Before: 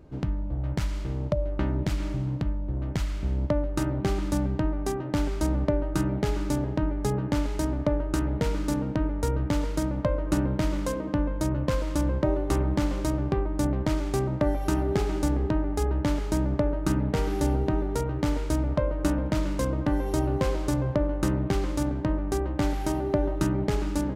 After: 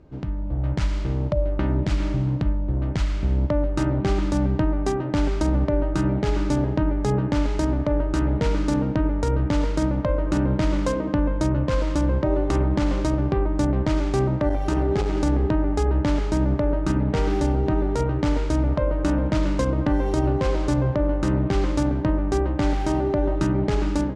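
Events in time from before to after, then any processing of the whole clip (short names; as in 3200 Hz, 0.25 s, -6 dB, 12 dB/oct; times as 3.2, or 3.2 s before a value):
14.49–15.17 core saturation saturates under 170 Hz
whole clip: Bessel low-pass 6100 Hz, order 4; limiter -18.5 dBFS; AGC gain up to 6 dB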